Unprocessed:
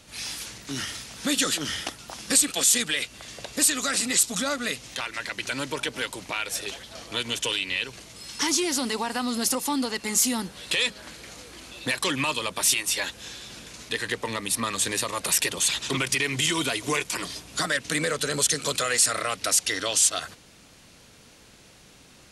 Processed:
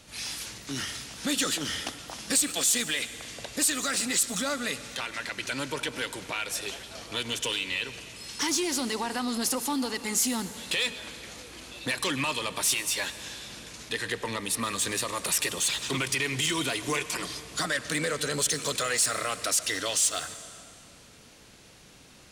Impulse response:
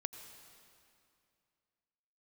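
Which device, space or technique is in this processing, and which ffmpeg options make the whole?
saturated reverb return: -filter_complex "[0:a]asplit=2[s0][s1];[1:a]atrim=start_sample=2205[s2];[s1][s2]afir=irnorm=-1:irlink=0,asoftclip=type=tanh:threshold=0.0447,volume=1.26[s3];[s0][s3]amix=inputs=2:normalize=0,volume=0.447"

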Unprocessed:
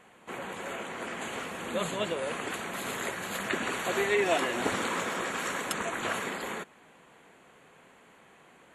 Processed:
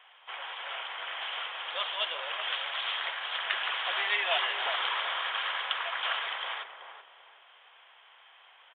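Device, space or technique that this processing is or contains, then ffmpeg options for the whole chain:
musical greeting card: -filter_complex "[0:a]aresample=8000,aresample=44100,highpass=f=750:w=0.5412,highpass=f=750:w=1.3066,equalizer=f=3200:t=o:w=0.34:g=12,asettb=1/sr,asplit=3[s0][s1][s2];[s0]atrim=end=2.434[s3];[s1]atrim=start=2.43:end=2.98,asetpts=PTS-STARTPTS,afade=t=in:d=0.004:c=qsin,afade=t=out:st=0.546:d=0.004:c=qsin,aemphasis=mode=production:type=bsi[s4];[s2]atrim=start=2.976[s5];[s3][s4]acrossfade=d=0.004:c1=hsin:c2=qsin[s6];[s6][s5]acrossfade=d=0.004:c1=qsin:c2=hsin,asplit=2[s7][s8];[s8]adelay=380,lowpass=f=820:p=1,volume=0.562,asplit=2[s9][s10];[s10]adelay=380,lowpass=f=820:p=1,volume=0.38,asplit=2[s11][s12];[s12]adelay=380,lowpass=f=820:p=1,volume=0.38,asplit=2[s13][s14];[s14]adelay=380,lowpass=f=820:p=1,volume=0.38,asplit=2[s15][s16];[s16]adelay=380,lowpass=f=820:p=1,volume=0.38[s17];[s7][s9][s11][s13][s15][s17]amix=inputs=6:normalize=0"

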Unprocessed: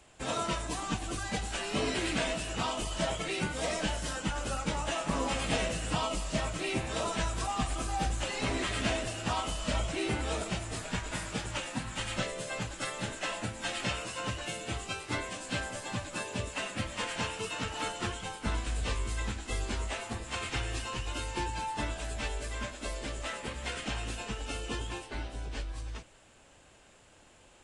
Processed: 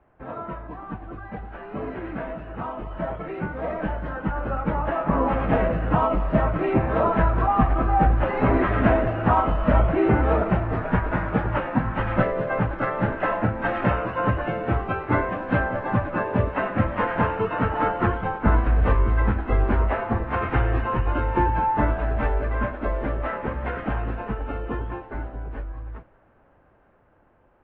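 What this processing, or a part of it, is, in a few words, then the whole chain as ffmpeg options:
action camera in a waterproof case: -af "lowpass=f=1600:w=0.5412,lowpass=f=1600:w=1.3066,dynaudnorm=f=880:g=11:m=5.62" -ar 22050 -c:a aac -b:a 48k

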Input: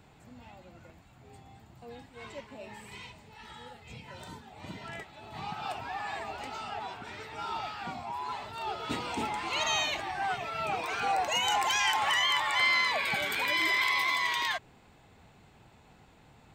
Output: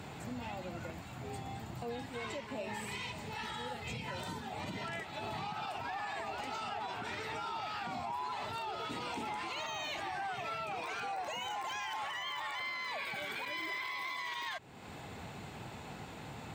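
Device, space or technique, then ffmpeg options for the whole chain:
podcast mastering chain: -af "highpass=83,deesser=1,acompressor=threshold=0.00282:ratio=2.5,alimiter=level_in=9.44:limit=0.0631:level=0:latency=1:release=49,volume=0.106,volume=4.22" -ar 44100 -c:a libmp3lame -b:a 96k

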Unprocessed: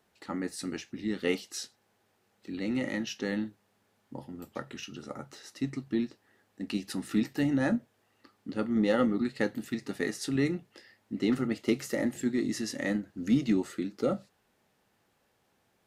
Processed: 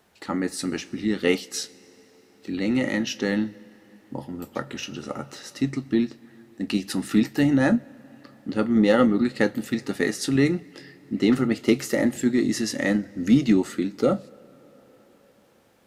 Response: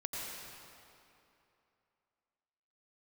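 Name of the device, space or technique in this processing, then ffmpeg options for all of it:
ducked reverb: -filter_complex "[0:a]asplit=3[s0][s1][s2];[1:a]atrim=start_sample=2205[s3];[s1][s3]afir=irnorm=-1:irlink=0[s4];[s2]apad=whole_len=699547[s5];[s4][s5]sidechaincompress=threshold=0.0112:ratio=5:attack=16:release=1270,volume=0.266[s6];[s0][s6]amix=inputs=2:normalize=0,volume=2.37"

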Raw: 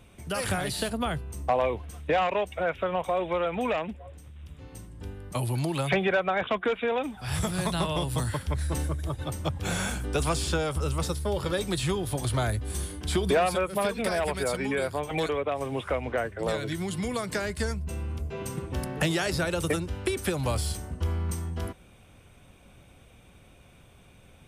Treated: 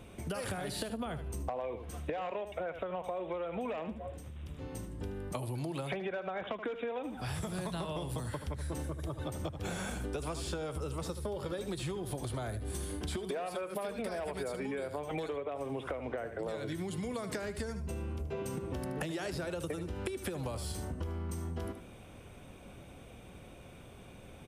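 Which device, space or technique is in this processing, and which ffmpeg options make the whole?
serial compression, peaks first: -filter_complex "[0:a]asettb=1/sr,asplit=3[s0][s1][s2];[s0]atrim=end=13.164[s3];[s1]atrim=start=13.16:end=13.88,asetpts=PTS-STARTPTS,afade=t=in:d=0.004:c=qsin,afade=t=out:st=0.716:d=0.004:c=qsin,highpass=f=290:p=1[s4];[s2]atrim=start=13.876[s5];[s3][s4]acrossfade=d=0.004:c1=hsin:c2=qsin[s6];[s6][s5]acrossfade=d=0.004:c1=qsin:c2=hsin,equalizer=f=400:w=0.5:g=6,aecho=1:1:76|152:0.224|0.0358,acompressor=threshold=0.0282:ratio=5,acompressor=threshold=0.0141:ratio=2"

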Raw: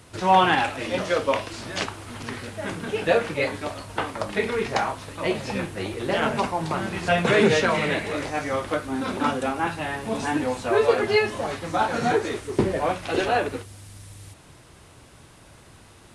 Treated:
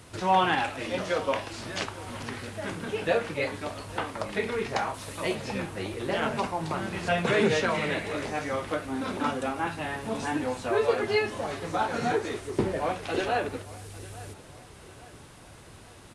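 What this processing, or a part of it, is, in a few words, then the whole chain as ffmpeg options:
parallel compression: -filter_complex "[0:a]asettb=1/sr,asplit=3[s0][s1][s2];[s0]atrim=end=4.944[s3];[s1]atrim=start=4.94:end=5.35,asetpts=PTS-STARTPTS,afade=t=in:d=0.004:c=qsin,afade=t=out:st=0.406:d=0.004:c=qsin,aemphasis=mode=production:type=cd[s4];[s2]atrim=start=5.346[s5];[s3][s4]acrossfade=d=0.004:c1=hsin:c2=qsin[s6];[s6][s5]acrossfade=d=0.004:c1=qsin:c2=hsin,asplit=2[s7][s8];[s8]acompressor=threshold=0.0126:ratio=6,volume=0.944[s9];[s7][s9]amix=inputs=2:normalize=0,aecho=1:1:851|1702|2553|3404:0.112|0.0539|0.0259|0.0124,volume=0.501"

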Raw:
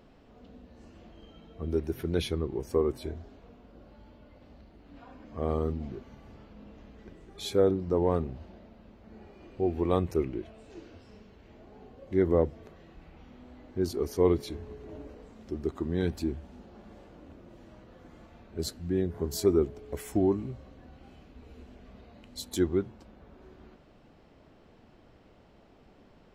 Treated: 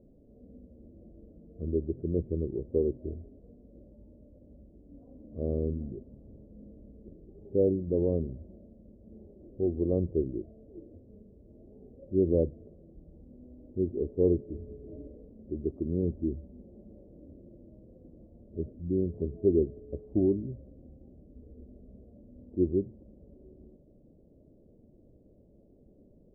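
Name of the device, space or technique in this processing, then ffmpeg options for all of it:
under water: -af "lowpass=f=420:w=0.5412,lowpass=f=420:w=1.3066,equalizer=f=580:t=o:w=0.4:g=10"

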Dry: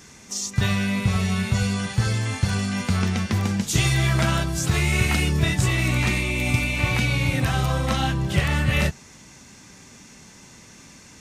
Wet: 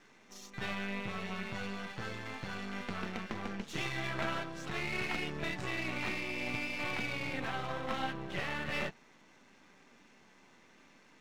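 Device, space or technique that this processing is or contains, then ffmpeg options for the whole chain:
crystal radio: -af "highpass=270,lowpass=2800,aeval=exprs='if(lt(val(0),0),0.251*val(0),val(0))':c=same,bandreject=f=4800:w=29,volume=0.473"

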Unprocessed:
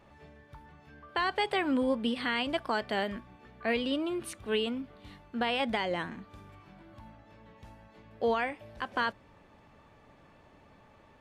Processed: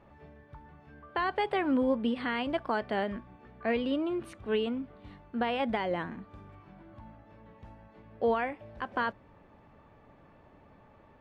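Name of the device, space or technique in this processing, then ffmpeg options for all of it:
through cloth: -af "highshelf=f=3600:g=-18,volume=1.19"

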